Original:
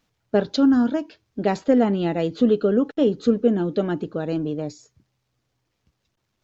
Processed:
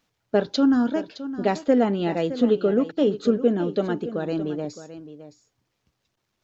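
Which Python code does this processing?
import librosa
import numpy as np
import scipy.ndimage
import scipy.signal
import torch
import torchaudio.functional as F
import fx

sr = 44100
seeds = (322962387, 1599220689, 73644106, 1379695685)

p1 = fx.low_shelf(x, sr, hz=180.0, db=-6.5)
y = p1 + fx.echo_single(p1, sr, ms=615, db=-13.5, dry=0)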